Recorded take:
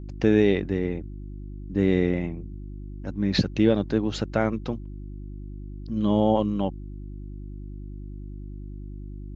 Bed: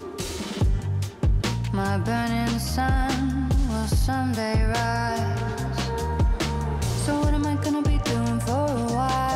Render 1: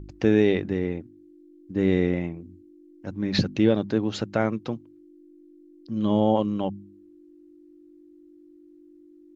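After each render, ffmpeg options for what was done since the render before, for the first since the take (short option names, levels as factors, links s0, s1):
-af "bandreject=f=50:t=h:w=4,bandreject=f=100:t=h:w=4,bandreject=f=150:t=h:w=4,bandreject=f=200:t=h:w=4,bandreject=f=250:t=h:w=4"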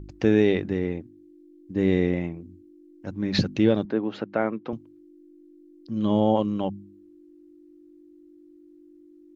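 -filter_complex "[0:a]asettb=1/sr,asplit=3[s0][s1][s2];[s0]atrim=end=0.924[s3];[s1]atrim=start=0.92:end=2.19,asetpts=PTS-STARTPTS,afade=t=in:d=0.004:c=qsin,afade=t=out:st=1.266:d=0.004:c=qsin,bandreject=f=1400:w=8.8[s4];[s2]atrim=start=2.186[s5];[s3][s4]acrossfade=d=0.004:c1=hsin:c2=qsin[s6];[s6][s5]acrossfade=d=0.004:c1=qsin:c2=hsin,asettb=1/sr,asplit=3[s7][s8][s9];[s7]atrim=end=3.854[s10];[s8]atrim=start=3.85:end=4.73,asetpts=PTS-STARTPTS,afade=t=in:d=0.004:c=qsin,afade=t=out:st=0.876:d=0.004:c=qsin,highpass=220,lowpass=2300[s11];[s9]atrim=start=4.726[s12];[s10][s11]acrossfade=d=0.004:c1=hsin:c2=qsin[s13];[s13][s12]acrossfade=d=0.004:c1=qsin:c2=hsin"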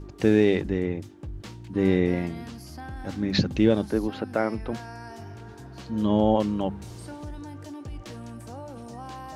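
-filter_complex "[1:a]volume=0.158[s0];[0:a][s0]amix=inputs=2:normalize=0"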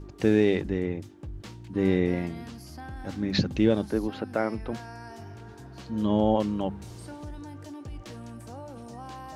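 -af "volume=0.794"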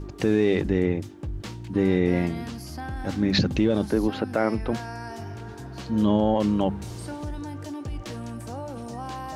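-af "acontrast=66,alimiter=limit=0.237:level=0:latency=1:release=23"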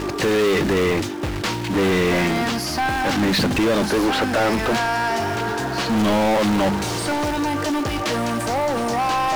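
-filter_complex "[0:a]acrusher=bits=5:mode=log:mix=0:aa=0.000001,asplit=2[s0][s1];[s1]highpass=f=720:p=1,volume=35.5,asoftclip=type=tanh:threshold=0.251[s2];[s0][s2]amix=inputs=2:normalize=0,lowpass=f=3800:p=1,volume=0.501"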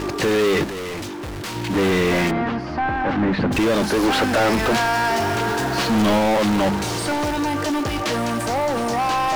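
-filter_complex "[0:a]asettb=1/sr,asplit=3[s0][s1][s2];[s0]atrim=end=0.644[s3];[s1]atrim=start=0.64:end=1.56,asetpts=PTS-STARTPTS,afade=t=in:d=0.004:c=qsin,afade=t=out:st=0.916:d=0.004:c=qsin,asoftclip=type=hard:threshold=0.0398[s4];[s2]atrim=start=1.556[s5];[s3][s4]acrossfade=d=0.004:c1=hsin:c2=qsin[s6];[s6][s5]acrossfade=d=0.004:c1=qsin:c2=hsin,asplit=3[s7][s8][s9];[s7]afade=t=out:st=2.3:d=0.02[s10];[s8]lowpass=1800,afade=t=in:st=2.3:d=0.02,afade=t=out:st=3.51:d=0.02[s11];[s9]afade=t=in:st=3.51:d=0.02[s12];[s10][s11][s12]amix=inputs=3:normalize=0,asettb=1/sr,asplit=3[s13][s14][s15];[s13]atrim=end=4.034[s16];[s14]atrim=start=4.03:end=6.19,asetpts=PTS-STARTPTS,afade=t=in:d=0.004:c=qsin,afade=t=out:st=2.156:d=0.004:c=qsin,aeval=exprs='val(0)+0.5*0.0398*sgn(val(0))':c=same[s17];[s15]atrim=start=6.186[s18];[s16][s17]acrossfade=d=0.004:c1=hsin:c2=qsin[s19];[s19][s18]acrossfade=d=0.004:c1=qsin:c2=hsin"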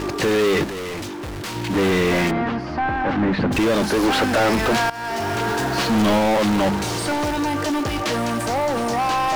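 -filter_complex "[0:a]asplit=2[s0][s1];[s0]atrim=end=4.9,asetpts=PTS-STARTPTS,afade=t=out:st=4.896:d=0.004:c=hsin:silence=0.149624[s2];[s1]atrim=start=4.9,asetpts=PTS-STARTPTS,afade=t=in:d=0.74:c=qsin:silence=0.149624[s3];[s2][s3]concat=n=2:v=0:a=1"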